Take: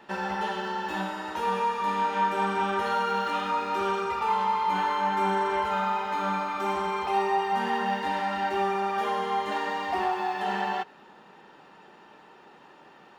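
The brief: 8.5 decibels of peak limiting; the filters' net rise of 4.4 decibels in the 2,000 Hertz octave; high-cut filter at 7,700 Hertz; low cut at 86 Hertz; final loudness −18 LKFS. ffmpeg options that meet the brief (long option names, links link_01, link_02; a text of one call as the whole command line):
ffmpeg -i in.wav -af "highpass=86,lowpass=7700,equalizer=frequency=2000:width_type=o:gain=5.5,volume=12dB,alimiter=limit=-10dB:level=0:latency=1" out.wav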